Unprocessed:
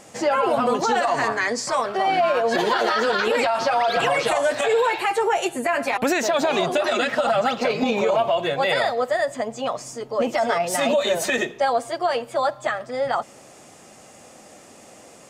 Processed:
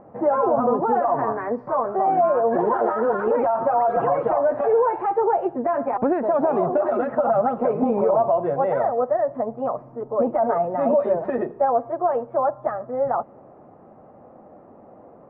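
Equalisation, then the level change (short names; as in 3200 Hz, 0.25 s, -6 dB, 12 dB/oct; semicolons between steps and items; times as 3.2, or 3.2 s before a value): LPF 1100 Hz 24 dB/oct; +1.5 dB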